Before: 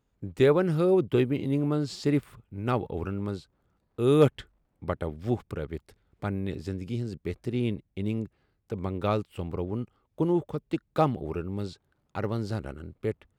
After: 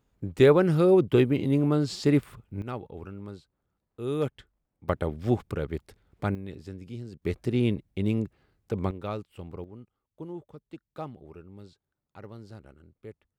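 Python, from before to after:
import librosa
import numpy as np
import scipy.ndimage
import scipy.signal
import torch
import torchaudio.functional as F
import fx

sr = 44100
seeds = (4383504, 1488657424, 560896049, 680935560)

y = fx.gain(x, sr, db=fx.steps((0.0, 3.0), (2.62, -8.5), (4.89, 3.0), (6.35, -7.0), (7.22, 3.5), (8.91, -7.0), (9.64, -14.0)))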